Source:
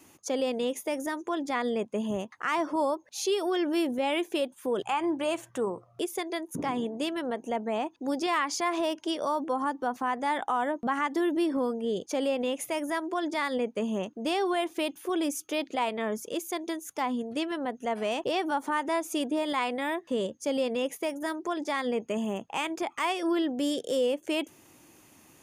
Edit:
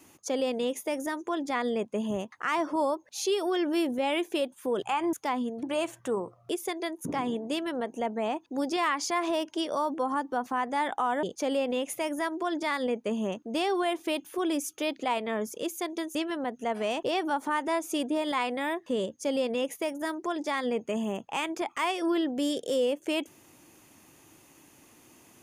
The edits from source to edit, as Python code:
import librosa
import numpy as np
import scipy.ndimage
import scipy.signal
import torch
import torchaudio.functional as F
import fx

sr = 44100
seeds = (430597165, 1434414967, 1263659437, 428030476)

y = fx.edit(x, sr, fx.cut(start_s=10.73, length_s=1.21),
    fx.move(start_s=16.86, length_s=0.5, to_s=5.13), tone=tone)